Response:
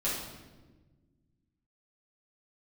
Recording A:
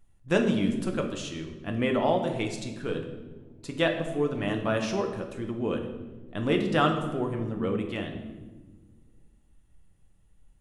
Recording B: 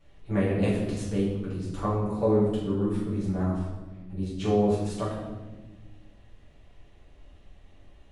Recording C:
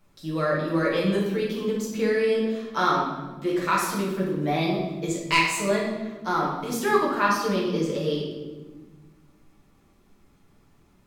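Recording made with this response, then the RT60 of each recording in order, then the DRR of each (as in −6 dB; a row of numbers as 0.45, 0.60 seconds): B; 1.3, 1.3, 1.3 seconds; 3.0, −9.5, −5.5 decibels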